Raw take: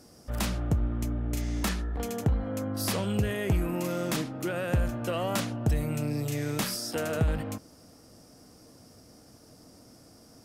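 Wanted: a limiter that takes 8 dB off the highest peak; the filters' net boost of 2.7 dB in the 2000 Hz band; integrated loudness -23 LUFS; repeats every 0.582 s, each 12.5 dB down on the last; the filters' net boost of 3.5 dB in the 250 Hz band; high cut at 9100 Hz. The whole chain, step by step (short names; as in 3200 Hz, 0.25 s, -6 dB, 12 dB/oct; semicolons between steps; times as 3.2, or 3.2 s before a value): LPF 9100 Hz; bell 250 Hz +4.5 dB; bell 2000 Hz +3.5 dB; limiter -21.5 dBFS; feedback echo 0.582 s, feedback 24%, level -12.5 dB; gain +7.5 dB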